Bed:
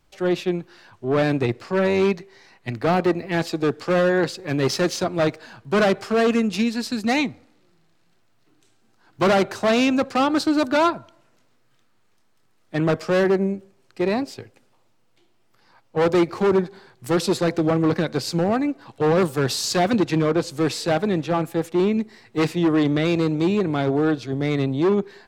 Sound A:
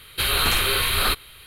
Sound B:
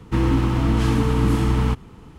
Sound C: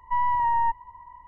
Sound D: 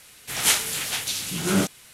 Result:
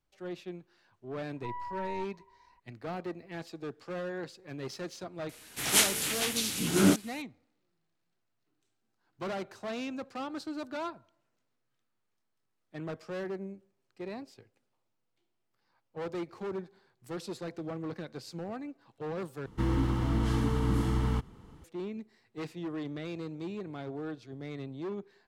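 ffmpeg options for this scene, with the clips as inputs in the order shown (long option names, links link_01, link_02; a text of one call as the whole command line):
ffmpeg -i bed.wav -i cue0.wav -i cue1.wav -i cue2.wav -i cue3.wav -filter_complex "[0:a]volume=-18.5dB[link_01];[4:a]equalizer=frequency=290:width_type=o:width=0.7:gain=8[link_02];[2:a]bandreject=frequency=2500:width=8.3[link_03];[link_01]asplit=2[link_04][link_05];[link_04]atrim=end=19.464[link_06];[link_03]atrim=end=2.18,asetpts=PTS-STARTPTS,volume=-9.5dB[link_07];[link_05]atrim=start=21.636[link_08];[3:a]atrim=end=1.27,asetpts=PTS-STARTPTS,volume=-16.5dB,afade=type=in:duration=0.004:curve=hsin,afade=type=out:start_time=1.266:duration=0.004:curve=hsin,adelay=1330[link_09];[link_02]atrim=end=1.93,asetpts=PTS-STARTPTS,volume=-4dB,afade=type=in:duration=0.004:curve=hsin,afade=type=out:start_time=1.926:duration=0.004:curve=hsin,adelay=233289S[link_10];[link_06][link_07]acrossfade=duration=0.004:curve1=hsin:curve2=hsin[link_11];[link_11][link_08]acrossfade=duration=0.004:curve1=hsin:curve2=hsin[link_12];[link_12][link_09][link_10]amix=inputs=3:normalize=0" out.wav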